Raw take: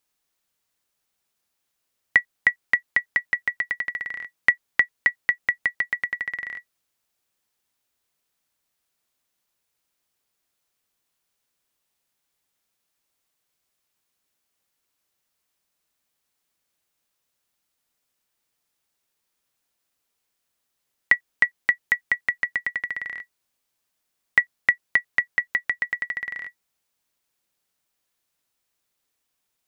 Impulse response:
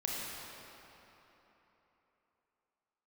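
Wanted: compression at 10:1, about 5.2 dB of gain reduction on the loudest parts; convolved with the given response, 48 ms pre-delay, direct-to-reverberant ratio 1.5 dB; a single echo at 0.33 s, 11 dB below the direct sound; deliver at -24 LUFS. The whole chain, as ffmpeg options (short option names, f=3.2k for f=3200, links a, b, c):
-filter_complex "[0:a]acompressor=threshold=-20dB:ratio=10,aecho=1:1:330:0.282,asplit=2[a][b];[1:a]atrim=start_sample=2205,adelay=48[c];[b][c]afir=irnorm=-1:irlink=0,volume=-6dB[d];[a][d]amix=inputs=2:normalize=0,volume=2dB"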